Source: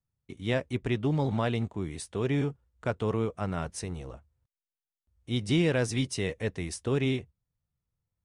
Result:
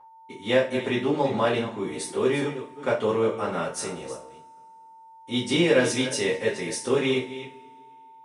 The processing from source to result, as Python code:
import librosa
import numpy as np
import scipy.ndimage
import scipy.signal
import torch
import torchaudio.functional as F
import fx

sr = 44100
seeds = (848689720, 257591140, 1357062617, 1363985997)

y = fx.reverse_delay(x, sr, ms=219, wet_db=-12.5)
y = scipy.signal.sosfilt(scipy.signal.cheby1(2, 1.0, 290.0, 'highpass', fs=sr, output='sos'), y)
y = y + 10.0 ** (-51.0 / 20.0) * np.sin(2.0 * np.pi * 900.0 * np.arange(len(y)) / sr)
y = fx.rev_double_slope(y, sr, seeds[0], early_s=0.31, late_s=2.2, knee_db=-27, drr_db=-7.5)